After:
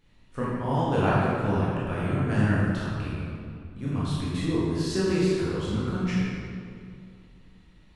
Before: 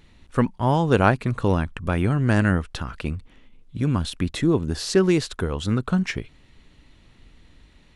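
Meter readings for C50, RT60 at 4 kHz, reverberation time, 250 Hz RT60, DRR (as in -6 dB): -3.5 dB, 1.4 s, 2.3 s, 2.6 s, -8.5 dB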